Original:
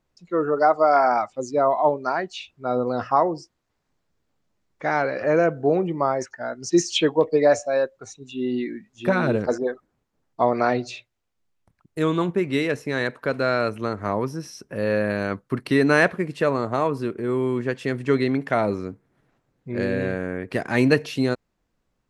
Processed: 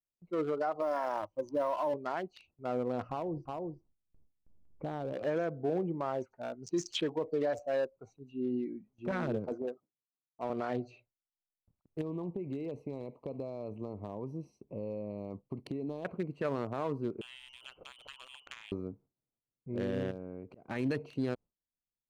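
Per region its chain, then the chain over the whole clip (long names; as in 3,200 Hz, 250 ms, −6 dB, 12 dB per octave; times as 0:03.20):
0:00.81–0:01.94: mu-law and A-law mismatch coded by A + EQ curve with evenly spaced ripples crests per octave 1.2, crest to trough 13 dB
0:03.09–0:05.13: spectral tilt −3.5 dB per octave + single-tap delay 362 ms −9.5 dB + downward compressor 4 to 1, threshold −24 dBFS
0:09.11–0:10.50: high-pass filter 94 Hz 24 dB per octave + transient designer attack −11 dB, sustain −5 dB
0:12.01–0:16.05: downward compressor 12 to 1, threshold −24 dBFS + Butterworth band-reject 1,500 Hz, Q 1.6
0:17.21–0:18.72: downward compressor 10 to 1, threshold −27 dBFS + voice inversion scrambler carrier 3,200 Hz + saturating transformer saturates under 2,900 Hz
0:20.11–0:20.69: volume swells 533 ms + downward compressor 1.5 to 1, threshold −39 dBFS
whole clip: adaptive Wiener filter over 25 samples; noise gate with hold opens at −48 dBFS; brickwall limiter −16 dBFS; level −8 dB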